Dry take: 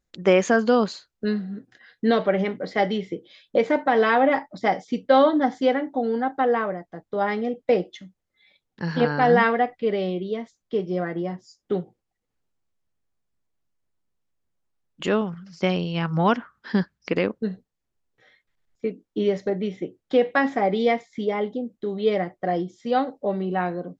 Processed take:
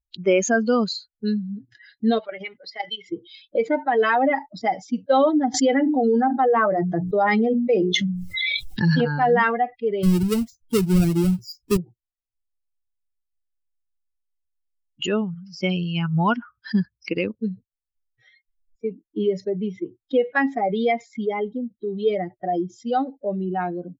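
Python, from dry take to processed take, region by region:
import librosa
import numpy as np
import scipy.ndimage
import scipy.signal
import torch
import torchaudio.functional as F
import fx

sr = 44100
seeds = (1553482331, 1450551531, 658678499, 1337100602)

y = fx.chain(x, sr, fx.highpass(hz=950.0, slope=6),
    fx.level_steps(step_db=11), at=(2.19, 3.1))
y = fx.chain(y, sr, fx.hum_notches(base_hz=60, count=7),
    fx.env_flatten(amount_pct=70), at=(5.54, 9.01))
y = fx.chain(y, sr, fx.halfwave_hold(),
    fx.bass_treble(bass_db=8, treble_db=1), at=(10.03, 11.77))
y = fx.bin_expand(y, sr, power=2.0)
y = fx.low_shelf(y, sr, hz=170.0, db=5.5)
y = fx.env_flatten(y, sr, amount_pct=50)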